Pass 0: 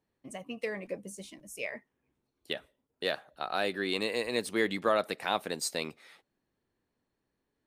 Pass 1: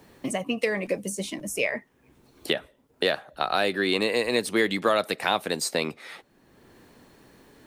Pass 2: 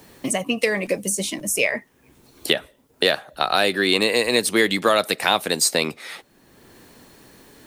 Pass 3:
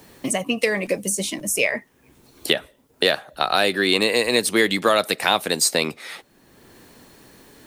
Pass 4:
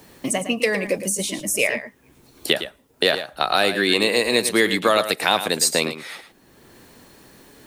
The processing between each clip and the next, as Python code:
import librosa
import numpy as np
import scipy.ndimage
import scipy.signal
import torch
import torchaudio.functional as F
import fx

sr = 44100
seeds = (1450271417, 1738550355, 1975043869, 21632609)

y1 = fx.band_squash(x, sr, depth_pct=70)
y1 = F.gain(torch.from_numpy(y1), 7.5).numpy()
y2 = fx.high_shelf(y1, sr, hz=3700.0, db=8.0)
y2 = F.gain(torch.from_numpy(y2), 4.0).numpy()
y3 = y2
y4 = y3 + 10.0 ** (-11.0 / 20.0) * np.pad(y3, (int(110 * sr / 1000.0), 0))[:len(y3)]